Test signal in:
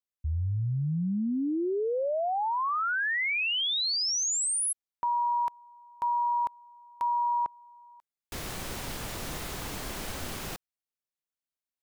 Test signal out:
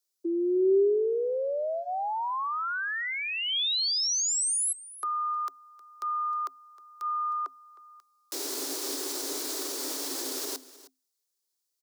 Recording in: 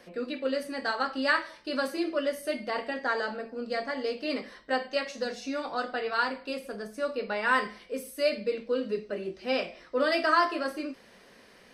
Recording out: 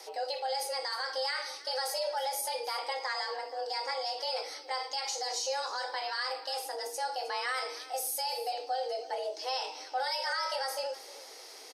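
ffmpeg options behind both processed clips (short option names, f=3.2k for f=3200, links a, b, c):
-filter_complex "[0:a]asplit=2[a][b];[b]acompressor=threshold=-39dB:ratio=6:attack=0.15:release=46:detection=peak,volume=1dB[c];[a][c]amix=inputs=2:normalize=0,highshelf=f=3.3k:t=q:w=1.5:g=10,alimiter=limit=-20.5dB:level=0:latency=1:release=50,equalizer=f=130:t=o:w=0.76:g=9.5,bandreject=f=440:w=12,asplit=2[d][e];[e]aecho=0:1:312:0.126[f];[d][f]amix=inputs=2:normalize=0,afreqshift=260,volume=-4dB"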